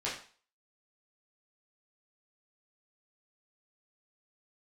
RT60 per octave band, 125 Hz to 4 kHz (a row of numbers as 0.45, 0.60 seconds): 0.35, 0.35, 0.40, 0.45, 0.40, 0.40 seconds